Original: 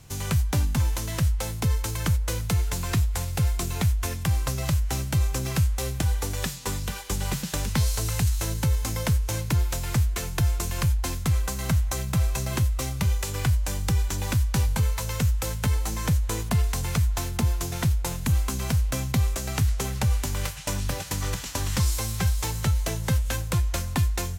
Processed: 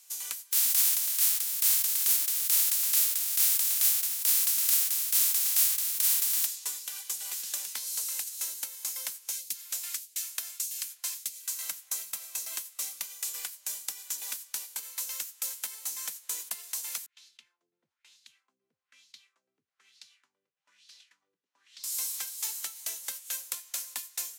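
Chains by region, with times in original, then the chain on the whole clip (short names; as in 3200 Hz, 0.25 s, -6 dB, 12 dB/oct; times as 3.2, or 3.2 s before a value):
0.51–6.45 spectral contrast lowered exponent 0.2 + tremolo 1.1 Hz, depth 34%
9.31–11.7 notch 850 Hz, Q 5.5 + phaser stages 2, 1.6 Hz, lowest notch 130–1200 Hz
17.06–21.84 passive tone stack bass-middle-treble 6-0-2 + LFO low-pass sine 1.1 Hz 390–4400 Hz
whole clip: compressor 3:1, threshold -23 dBFS; Bessel high-pass 340 Hz, order 4; differentiator; gain +1 dB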